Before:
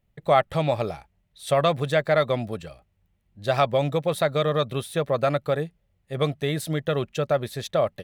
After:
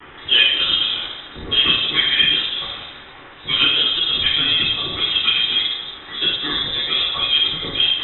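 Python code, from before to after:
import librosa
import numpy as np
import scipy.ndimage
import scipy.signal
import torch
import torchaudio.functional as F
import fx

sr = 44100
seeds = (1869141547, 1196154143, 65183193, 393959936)

y = x + 0.5 * 10.0 ** (-18.5 / 20.0) * np.diff(np.sign(x), prepend=np.sign(x[:1]))
y = fx.highpass(y, sr, hz=390.0, slope=6)
y = fx.room_shoebox(y, sr, seeds[0], volume_m3=380.0, walls='mixed', distance_m=4.8)
y = fx.freq_invert(y, sr, carrier_hz=3800)
y = F.gain(torch.from_numpy(y), -5.5).numpy()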